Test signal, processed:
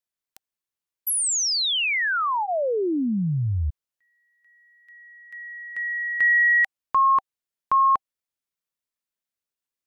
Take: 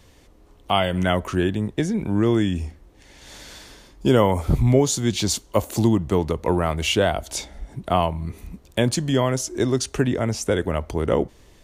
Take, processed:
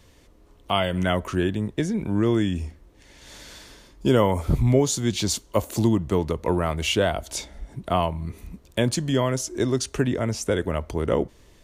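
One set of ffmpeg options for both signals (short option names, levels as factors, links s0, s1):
-af "bandreject=f=780:w=12,volume=0.794"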